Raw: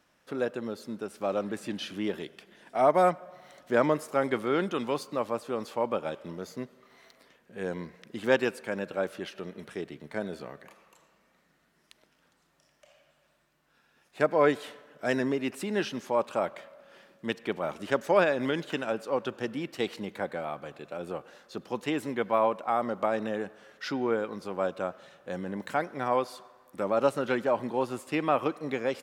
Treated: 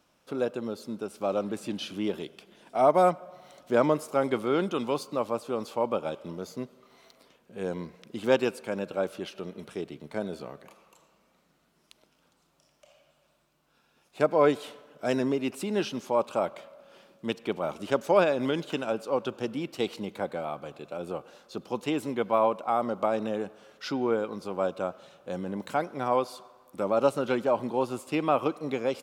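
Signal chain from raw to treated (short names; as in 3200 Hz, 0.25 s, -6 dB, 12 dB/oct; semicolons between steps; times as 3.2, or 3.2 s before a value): bell 1800 Hz -10 dB 0.41 oct; gain +1.5 dB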